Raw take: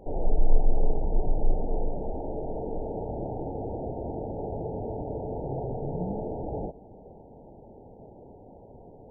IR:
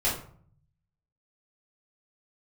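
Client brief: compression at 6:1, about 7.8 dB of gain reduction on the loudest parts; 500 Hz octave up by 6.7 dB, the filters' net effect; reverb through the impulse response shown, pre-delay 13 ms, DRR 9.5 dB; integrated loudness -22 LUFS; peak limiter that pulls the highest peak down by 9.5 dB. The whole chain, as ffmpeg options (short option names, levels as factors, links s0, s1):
-filter_complex "[0:a]equalizer=f=500:t=o:g=8,acompressor=threshold=0.1:ratio=6,alimiter=limit=0.0668:level=0:latency=1,asplit=2[s0][s1];[1:a]atrim=start_sample=2205,adelay=13[s2];[s1][s2]afir=irnorm=-1:irlink=0,volume=0.1[s3];[s0][s3]amix=inputs=2:normalize=0,volume=3.55"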